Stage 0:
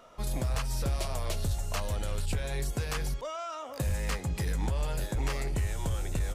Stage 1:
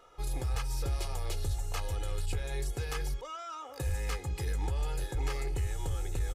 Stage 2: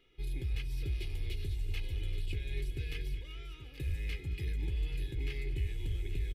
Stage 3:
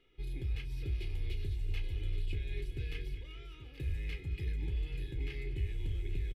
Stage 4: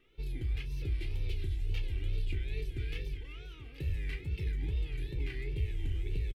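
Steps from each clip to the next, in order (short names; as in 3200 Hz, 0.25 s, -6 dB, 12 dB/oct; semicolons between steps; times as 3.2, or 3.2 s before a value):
comb 2.4 ms, depth 74%; gain -5.5 dB
EQ curve 380 Hz 0 dB, 560 Hz -19 dB, 1200 Hz -23 dB, 2200 Hz +3 dB, 3400 Hz +1 dB, 6900 Hz -17 dB, 13000 Hz -8 dB; on a send: tapped delay 0.219/0.387/0.593/0.83 s -16/-17.5/-18/-12.5 dB; on the sum: gain -2.5 dB
high shelf 4700 Hz -8 dB; doubler 32 ms -11.5 dB; gain -1 dB
wow and flutter 130 cents; gain +2 dB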